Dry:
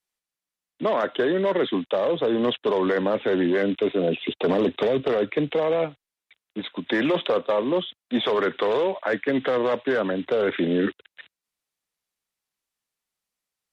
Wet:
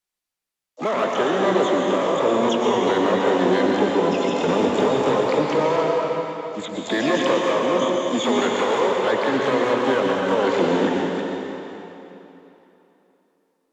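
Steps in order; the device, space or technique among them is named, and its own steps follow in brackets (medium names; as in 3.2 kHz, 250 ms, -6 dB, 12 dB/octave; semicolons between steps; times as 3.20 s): shimmer-style reverb (harmony voices +12 st -7 dB; reverberation RT60 3.3 s, pre-delay 105 ms, DRR -2 dB); trim -1 dB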